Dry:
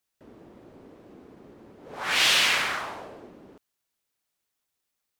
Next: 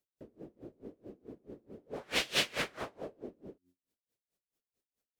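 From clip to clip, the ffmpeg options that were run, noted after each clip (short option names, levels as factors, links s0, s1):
-af "lowshelf=f=690:t=q:w=1.5:g=9,bandreject=f=89.56:t=h:w=4,bandreject=f=179.12:t=h:w=4,bandreject=f=268.68:t=h:w=4,bandreject=f=358.24:t=h:w=4,aeval=exprs='val(0)*pow(10,-28*(0.5-0.5*cos(2*PI*4.6*n/s))/20)':c=same,volume=0.562"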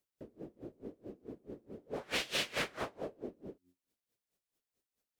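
-af "alimiter=limit=0.0631:level=0:latency=1:release=134,volume=1.19"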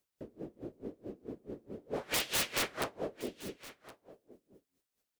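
-af "aeval=exprs='(mod(23.7*val(0)+1,2)-1)/23.7':c=same,aecho=1:1:1067:0.126,volume=1.5"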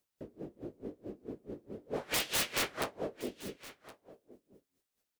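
-filter_complex "[0:a]asplit=2[s0][s1];[s1]adelay=20,volume=0.211[s2];[s0][s2]amix=inputs=2:normalize=0"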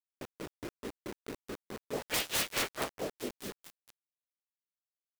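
-af "acrusher=bits=6:mix=0:aa=0.000001"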